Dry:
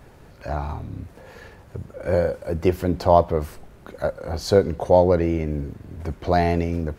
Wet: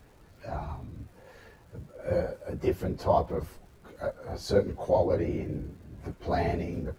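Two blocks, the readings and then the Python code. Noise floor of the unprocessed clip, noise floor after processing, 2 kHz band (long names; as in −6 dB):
−48 dBFS, −56 dBFS, −8.0 dB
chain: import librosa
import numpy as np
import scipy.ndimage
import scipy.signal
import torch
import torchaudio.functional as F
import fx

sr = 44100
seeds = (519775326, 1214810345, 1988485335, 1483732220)

y = fx.phase_scramble(x, sr, seeds[0], window_ms=50)
y = fx.dmg_crackle(y, sr, seeds[1], per_s=340.0, level_db=-46.0)
y = y * 10.0 ** (-8.5 / 20.0)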